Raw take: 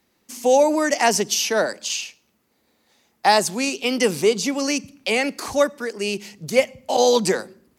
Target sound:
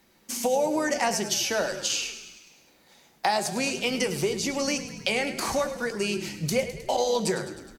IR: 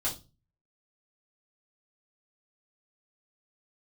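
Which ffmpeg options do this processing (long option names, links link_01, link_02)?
-filter_complex "[0:a]acompressor=threshold=-30dB:ratio=4,asplit=8[link_01][link_02][link_03][link_04][link_05][link_06][link_07][link_08];[link_02]adelay=104,afreqshift=-36,volume=-12dB[link_09];[link_03]adelay=208,afreqshift=-72,volume=-16.3dB[link_10];[link_04]adelay=312,afreqshift=-108,volume=-20.6dB[link_11];[link_05]adelay=416,afreqshift=-144,volume=-24.9dB[link_12];[link_06]adelay=520,afreqshift=-180,volume=-29.2dB[link_13];[link_07]adelay=624,afreqshift=-216,volume=-33.5dB[link_14];[link_08]adelay=728,afreqshift=-252,volume=-37.8dB[link_15];[link_01][link_09][link_10][link_11][link_12][link_13][link_14][link_15]amix=inputs=8:normalize=0,asplit=2[link_16][link_17];[1:a]atrim=start_sample=2205,asetrate=66150,aresample=44100[link_18];[link_17][link_18]afir=irnorm=-1:irlink=0,volume=-9dB[link_19];[link_16][link_19]amix=inputs=2:normalize=0,volume=3dB"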